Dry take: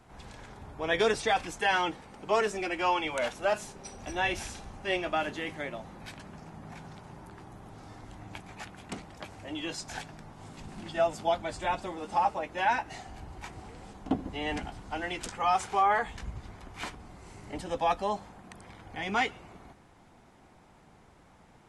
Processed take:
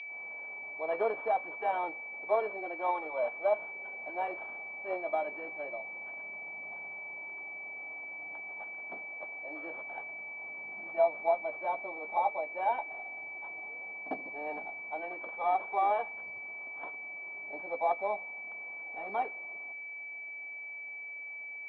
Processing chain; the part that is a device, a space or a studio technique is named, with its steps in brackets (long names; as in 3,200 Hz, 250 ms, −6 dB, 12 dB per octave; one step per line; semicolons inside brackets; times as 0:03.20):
toy sound module (linearly interpolated sample-rate reduction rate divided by 6×; switching amplifier with a slow clock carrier 2,300 Hz; loudspeaker in its box 600–4,400 Hz, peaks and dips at 630 Hz +5 dB, 1,400 Hz −6 dB, 2,100 Hz −8 dB, 3,200 Hz +6 dB)